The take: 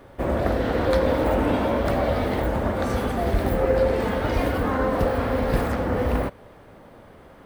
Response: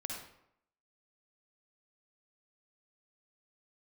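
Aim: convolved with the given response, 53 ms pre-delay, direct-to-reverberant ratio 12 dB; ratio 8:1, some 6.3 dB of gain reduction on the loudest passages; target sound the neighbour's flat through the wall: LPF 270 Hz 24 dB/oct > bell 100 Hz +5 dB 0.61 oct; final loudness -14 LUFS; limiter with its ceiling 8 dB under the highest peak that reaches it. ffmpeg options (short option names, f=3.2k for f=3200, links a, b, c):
-filter_complex "[0:a]acompressor=threshold=-22dB:ratio=8,alimiter=limit=-19.5dB:level=0:latency=1,asplit=2[a][b];[1:a]atrim=start_sample=2205,adelay=53[c];[b][c]afir=irnorm=-1:irlink=0,volume=-12dB[d];[a][d]amix=inputs=2:normalize=0,lowpass=f=270:w=0.5412,lowpass=f=270:w=1.3066,equalizer=f=100:t=o:w=0.61:g=5,volume=18.5dB"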